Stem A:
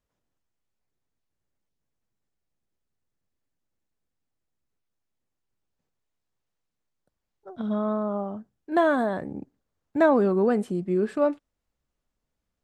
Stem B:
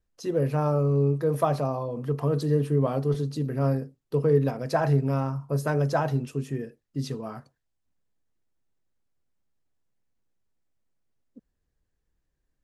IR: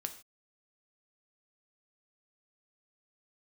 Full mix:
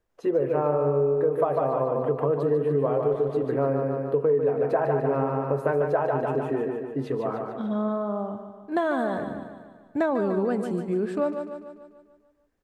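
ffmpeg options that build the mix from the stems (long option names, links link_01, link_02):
-filter_complex "[0:a]volume=-0.5dB,asplit=2[link_01][link_02];[link_02]volume=-9.5dB[link_03];[1:a]firequalizer=gain_entry='entry(170,0);entry(400,13);entry(2500,5);entry(5200,-16);entry(7600,-10)':delay=0.05:min_phase=1,volume=-3dB,asplit=2[link_04][link_05];[link_05]volume=-5dB[link_06];[link_03][link_06]amix=inputs=2:normalize=0,aecho=0:1:147|294|441|588|735|882|1029|1176:1|0.54|0.292|0.157|0.085|0.0459|0.0248|0.0134[link_07];[link_01][link_04][link_07]amix=inputs=3:normalize=0,acompressor=threshold=-21dB:ratio=4"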